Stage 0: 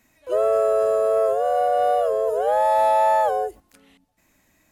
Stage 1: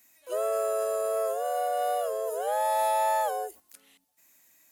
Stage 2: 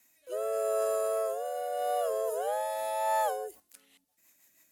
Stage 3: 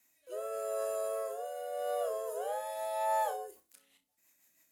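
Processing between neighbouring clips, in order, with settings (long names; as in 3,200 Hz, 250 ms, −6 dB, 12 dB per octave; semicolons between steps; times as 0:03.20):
RIAA equalisation recording; level −7 dB
rotating-speaker cabinet horn 0.8 Hz, later 6.3 Hz, at 0:03.00
flutter between parallel walls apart 5.3 metres, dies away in 0.22 s; level −5.5 dB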